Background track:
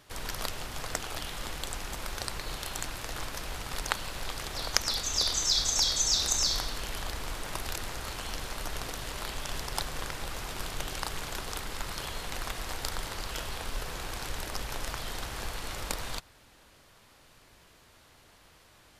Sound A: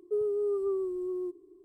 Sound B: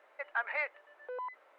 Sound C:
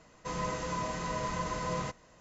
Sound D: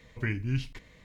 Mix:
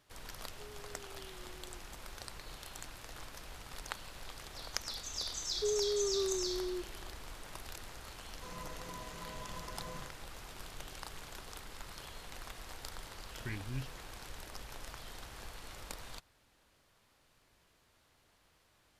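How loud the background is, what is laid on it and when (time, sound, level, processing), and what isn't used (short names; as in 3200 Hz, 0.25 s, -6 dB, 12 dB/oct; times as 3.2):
background track -11.5 dB
0.48 add A -14.5 dB + compressor 2:1, threshold -48 dBFS
5.51 add A -4.5 dB
8.17 add C -13.5 dB
13.23 add D -11 dB
not used: B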